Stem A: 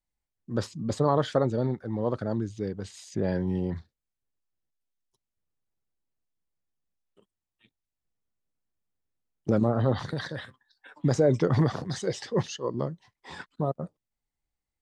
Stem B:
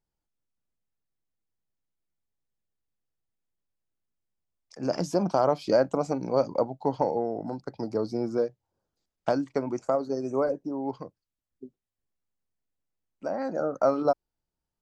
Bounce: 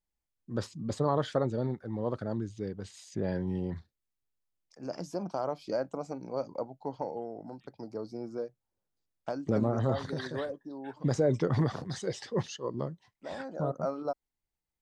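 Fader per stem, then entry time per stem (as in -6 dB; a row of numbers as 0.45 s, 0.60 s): -4.5 dB, -10.0 dB; 0.00 s, 0.00 s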